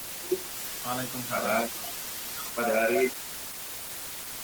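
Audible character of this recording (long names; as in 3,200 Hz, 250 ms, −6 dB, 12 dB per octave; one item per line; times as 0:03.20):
a quantiser's noise floor 6 bits, dither triangular
Opus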